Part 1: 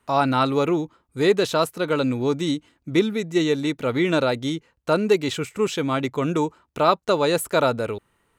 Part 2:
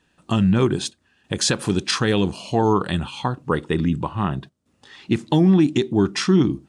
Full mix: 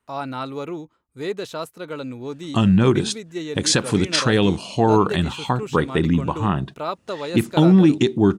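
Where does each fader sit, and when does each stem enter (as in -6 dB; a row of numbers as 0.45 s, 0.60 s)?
-9.0 dB, +2.0 dB; 0.00 s, 2.25 s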